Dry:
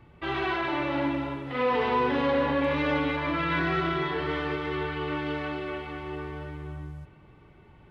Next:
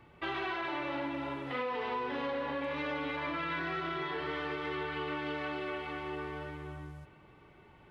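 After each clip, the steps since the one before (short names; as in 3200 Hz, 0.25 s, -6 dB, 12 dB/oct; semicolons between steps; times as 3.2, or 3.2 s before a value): low shelf 230 Hz -9.5 dB; compressor, threshold -33 dBFS, peak gain reduction 10 dB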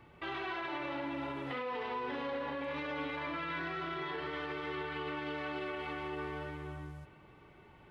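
limiter -30.5 dBFS, peak gain reduction 5 dB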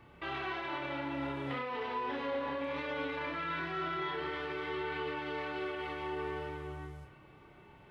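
flutter echo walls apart 5 m, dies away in 0.27 s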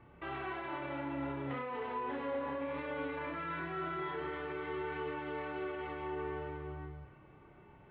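air absorption 450 m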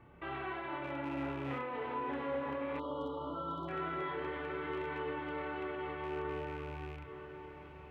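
rattling part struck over -43 dBFS, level -42 dBFS; diffused feedback echo 0.943 s, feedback 56%, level -11 dB; spectral delete 2.79–3.69, 1400–2900 Hz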